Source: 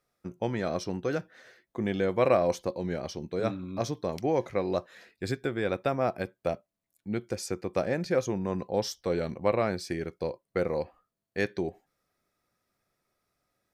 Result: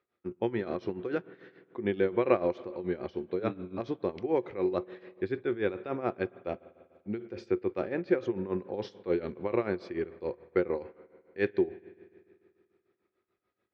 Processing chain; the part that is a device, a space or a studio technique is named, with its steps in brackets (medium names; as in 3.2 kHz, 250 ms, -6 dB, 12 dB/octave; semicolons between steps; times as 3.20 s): combo amplifier with spring reverb and tremolo (spring tank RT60 2.4 s, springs 49 ms, chirp 30 ms, DRR 17.5 dB; tremolo 6.9 Hz, depth 79%; cabinet simulation 78–3500 Hz, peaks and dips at 150 Hz -9 dB, 370 Hz +9 dB, 650 Hz -5 dB)